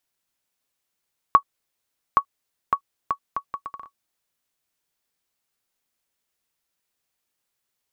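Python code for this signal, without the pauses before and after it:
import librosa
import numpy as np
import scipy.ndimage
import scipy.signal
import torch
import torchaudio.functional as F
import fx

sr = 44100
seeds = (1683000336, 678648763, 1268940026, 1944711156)

y = fx.bouncing_ball(sr, first_gap_s=0.82, ratio=0.68, hz=1120.0, decay_ms=80.0, level_db=-2.5)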